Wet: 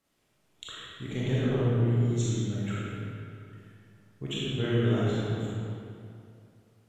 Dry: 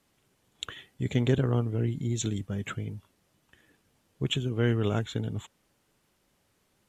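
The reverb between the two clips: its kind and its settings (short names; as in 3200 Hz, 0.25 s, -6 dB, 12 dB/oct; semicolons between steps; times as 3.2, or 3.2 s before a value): digital reverb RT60 2.5 s, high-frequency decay 0.7×, pre-delay 0 ms, DRR -8 dB; gain -8.5 dB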